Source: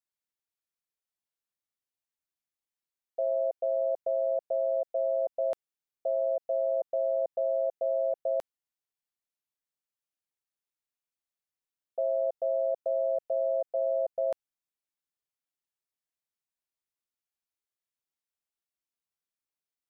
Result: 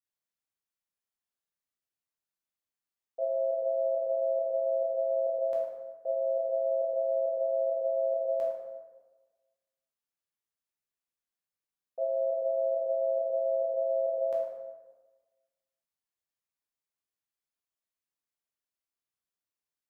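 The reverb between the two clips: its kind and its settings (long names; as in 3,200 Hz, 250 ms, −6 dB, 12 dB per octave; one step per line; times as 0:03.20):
dense smooth reverb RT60 1.3 s, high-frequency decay 0.55×, pre-delay 0 ms, DRR −4 dB
level −6.5 dB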